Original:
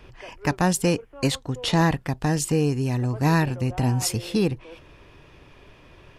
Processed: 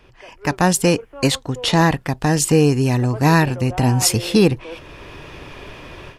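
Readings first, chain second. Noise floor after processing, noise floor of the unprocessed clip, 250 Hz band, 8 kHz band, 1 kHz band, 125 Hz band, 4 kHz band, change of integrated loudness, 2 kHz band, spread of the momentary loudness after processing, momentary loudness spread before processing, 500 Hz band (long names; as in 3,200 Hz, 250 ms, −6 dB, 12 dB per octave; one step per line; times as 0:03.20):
−49 dBFS, −51 dBFS, +6.0 dB, +8.0 dB, +6.5 dB, +5.0 dB, +7.5 dB, +6.5 dB, +7.0 dB, 22 LU, 6 LU, +7.5 dB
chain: low-shelf EQ 220 Hz −4 dB
automatic gain control gain up to 16 dB
level −1 dB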